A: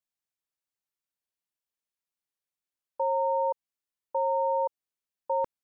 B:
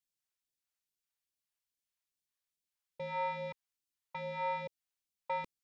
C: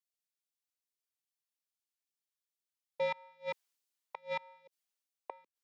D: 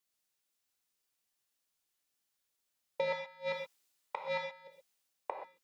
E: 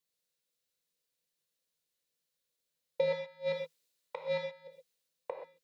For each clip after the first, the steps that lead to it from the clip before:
soft clipping −27 dBFS, distortion −13 dB; all-pass phaser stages 2, 2.4 Hz, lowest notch 240–1,100 Hz
gate with flip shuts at −33 dBFS, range −29 dB; Chebyshev high-pass filter 380 Hz, order 2; multiband upward and downward expander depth 40%; level +7 dB
downward compressor 4 to 1, threshold −39 dBFS, peak gain reduction 8.5 dB; on a send at −2 dB: convolution reverb, pre-delay 3 ms; on the sum: level +7 dB
thirty-one-band graphic EQ 160 Hz +10 dB, 500 Hz +12 dB, 800 Hz −7 dB, 1,250 Hz −4 dB, 4,000 Hz +5 dB; level −3 dB

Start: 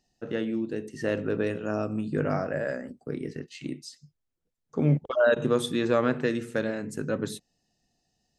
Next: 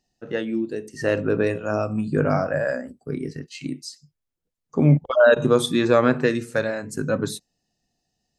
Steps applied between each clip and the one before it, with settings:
noise reduction from a noise print of the clip's start 8 dB
level +7 dB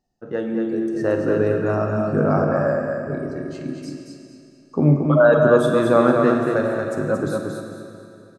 high shelf with overshoot 1,700 Hz −8.5 dB, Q 1.5
repeating echo 228 ms, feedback 28%, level −4.5 dB
on a send at −4 dB: convolution reverb RT60 2.8 s, pre-delay 36 ms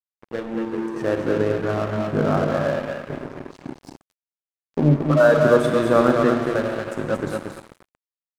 dead-zone distortion −29.5 dBFS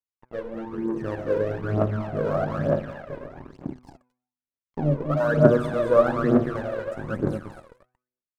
high-shelf EQ 2,100 Hz −12 dB
hum removal 124.9 Hz, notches 21
phase shifter 1.1 Hz, delay 2.1 ms, feedback 69%
level −5 dB

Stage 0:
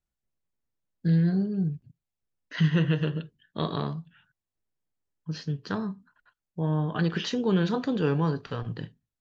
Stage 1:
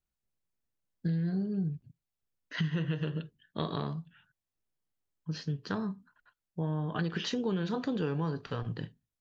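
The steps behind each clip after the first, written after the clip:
downward compressor, threshold −26 dBFS, peak gain reduction 8.5 dB
level −2 dB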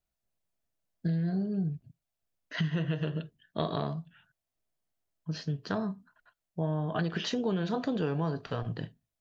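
parametric band 660 Hz +10.5 dB 0.27 octaves
level +1 dB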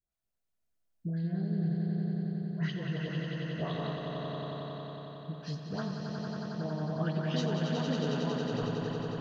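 all-pass dispersion highs, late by 121 ms, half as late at 1,100 Hz
on a send: echo that builds up and dies away 91 ms, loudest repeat 5, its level −6.5 dB
on the sum: level −5.5 dB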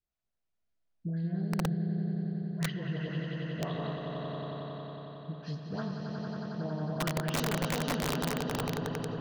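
high-frequency loss of the air 100 metres
wrap-around overflow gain 24 dB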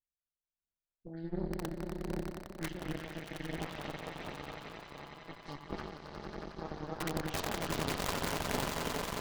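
phase shifter 1.4 Hz, delay 2.7 ms, feedback 34%
echo that builds up and dies away 90 ms, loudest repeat 8, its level −12 dB
harmonic generator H 3 −11 dB, 6 −18 dB, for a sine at −16.5 dBFS
level +1 dB

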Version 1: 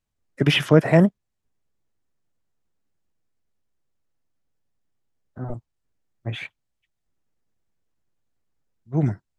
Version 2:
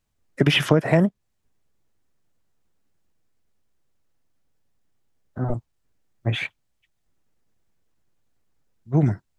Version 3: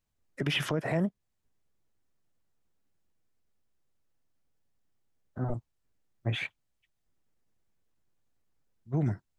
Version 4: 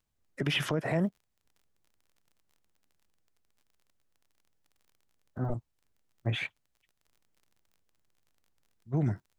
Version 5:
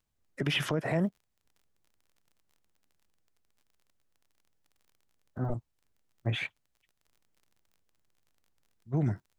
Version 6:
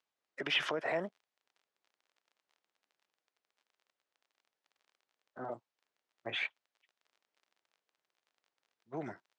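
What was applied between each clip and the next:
downward compressor 6 to 1, threshold −20 dBFS, peak gain reduction 11.5 dB; level +6 dB
brickwall limiter −13.5 dBFS, peak gain reduction 10.5 dB; level −6.5 dB
surface crackle 33 per second −52 dBFS
no processing that can be heard
band-pass filter 500–4,800 Hz

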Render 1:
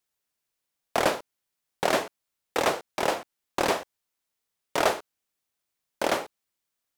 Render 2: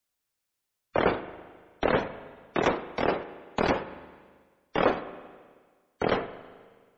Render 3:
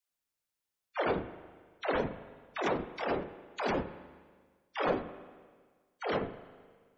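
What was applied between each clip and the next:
frequency shifter −130 Hz; gate on every frequency bin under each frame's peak −20 dB strong; spring reverb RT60 1.6 s, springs 39/54 ms, chirp 70 ms, DRR 12.5 dB
all-pass dispersion lows, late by 122 ms, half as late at 350 Hz; level −6 dB

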